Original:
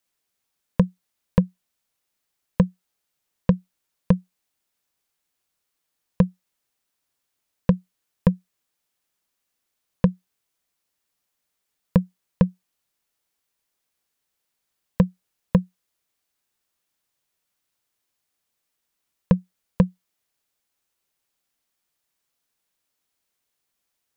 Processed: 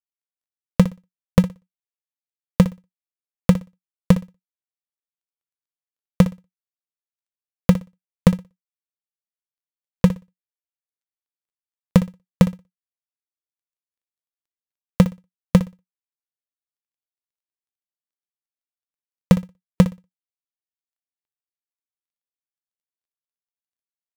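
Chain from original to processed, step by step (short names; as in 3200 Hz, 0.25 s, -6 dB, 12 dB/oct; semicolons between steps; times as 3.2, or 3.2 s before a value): switching dead time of 0.25 ms; reverb removal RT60 0.79 s; flutter echo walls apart 10.3 m, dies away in 0.25 s; gain +4 dB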